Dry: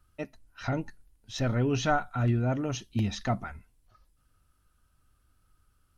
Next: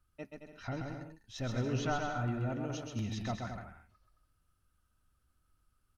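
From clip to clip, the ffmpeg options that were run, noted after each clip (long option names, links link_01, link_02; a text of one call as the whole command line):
ffmpeg -i in.wav -af "aecho=1:1:130|221|284.7|329.3|360.5:0.631|0.398|0.251|0.158|0.1,volume=-9dB" out.wav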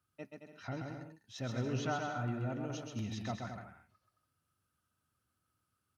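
ffmpeg -i in.wav -af "highpass=frequency=94:width=0.5412,highpass=frequency=94:width=1.3066,volume=-2dB" out.wav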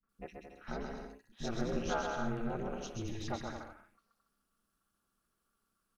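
ffmpeg -i in.wav -filter_complex "[0:a]aeval=exprs='val(0)*sin(2*PI*110*n/s)':channel_layout=same,acrossover=split=230|2300[link_01][link_02][link_03];[link_02]adelay=30[link_04];[link_03]adelay=90[link_05];[link_01][link_04][link_05]amix=inputs=3:normalize=0,volume=5dB" out.wav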